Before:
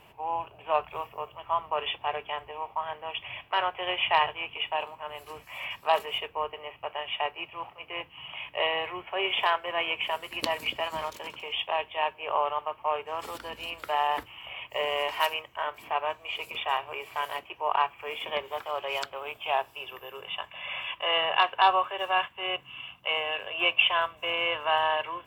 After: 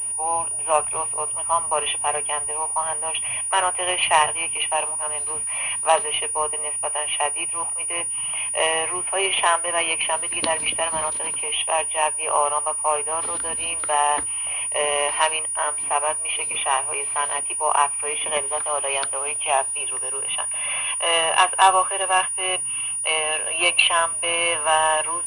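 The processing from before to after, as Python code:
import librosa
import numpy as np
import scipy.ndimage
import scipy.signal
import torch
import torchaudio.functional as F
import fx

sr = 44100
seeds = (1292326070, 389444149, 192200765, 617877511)

y = fx.pwm(x, sr, carrier_hz=9600.0)
y = y * 10.0 ** (6.0 / 20.0)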